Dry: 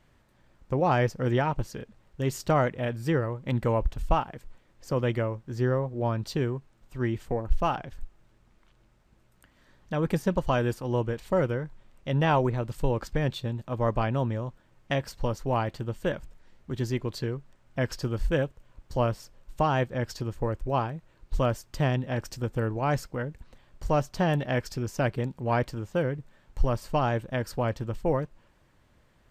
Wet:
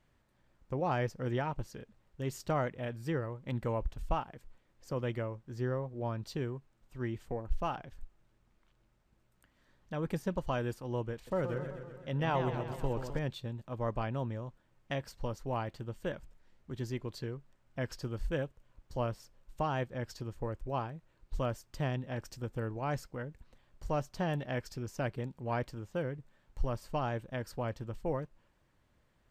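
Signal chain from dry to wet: 11.14–13.19 s: modulated delay 127 ms, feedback 64%, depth 135 cents, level -8 dB; trim -8.5 dB

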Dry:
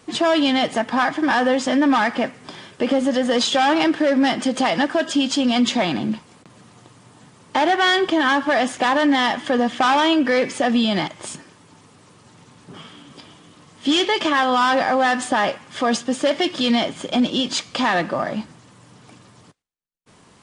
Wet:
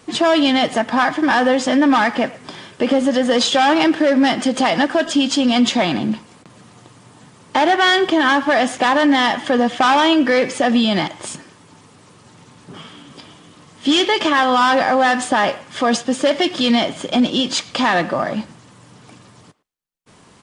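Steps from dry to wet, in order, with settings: speakerphone echo 110 ms, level -19 dB; trim +3 dB

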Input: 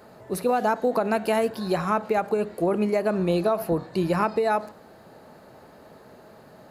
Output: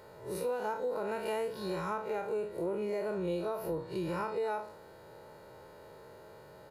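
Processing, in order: spectral blur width 91 ms; comb 2.1 ms, depth 64%; compression 2.5:1, threshold -31 dBFS, peak gain reduction 8.5 dB; trim -3.5 dB

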